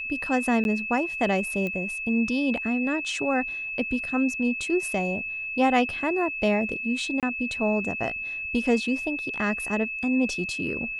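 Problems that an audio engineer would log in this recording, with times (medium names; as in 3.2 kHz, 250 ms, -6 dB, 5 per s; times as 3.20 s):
whine 2.6 kHz -30 dBFS
0.64–0.65 s: dropout 11 ms
1.67 s: pop -19 dBFS
7.20–7.23 s: dropout 27 ms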